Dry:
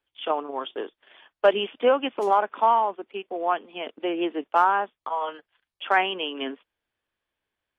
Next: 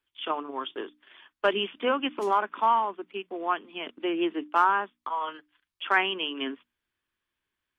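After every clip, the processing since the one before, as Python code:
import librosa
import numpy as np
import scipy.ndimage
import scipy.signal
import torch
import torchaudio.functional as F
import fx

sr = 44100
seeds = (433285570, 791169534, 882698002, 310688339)

y = fx.band_shelf(x, sr, hz=610.0, db=-8.0, octaves=1.1)
y = fx.hum_notches(y, sr, base_hz=60, count=5)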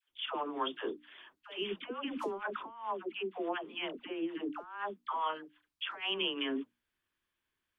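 y = fx.over_compress(x, sr, threshold_db=-30.0, ratio=-0.5)
y = fx.dispersion(y, sr, late='lows', ms=97.0, hz=660.0)
y = y * librosa.db_to_amplitude(-5.5)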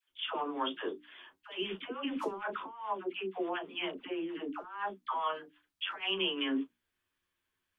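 y = fx.room_early_taps(x, sr, ms=(11, 37), db=(-5.0, -14.5))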